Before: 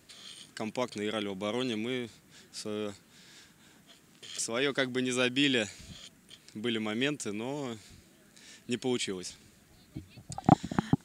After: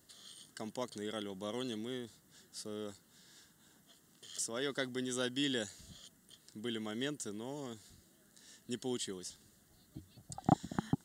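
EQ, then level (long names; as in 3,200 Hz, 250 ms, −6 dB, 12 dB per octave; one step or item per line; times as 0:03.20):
Butterworth band-reject 2,400 Hz, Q 3.5
first-order pre-emphasis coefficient 0.8
high-shelf EQ 2,300 Hz −10.5 dB
+6.5 dB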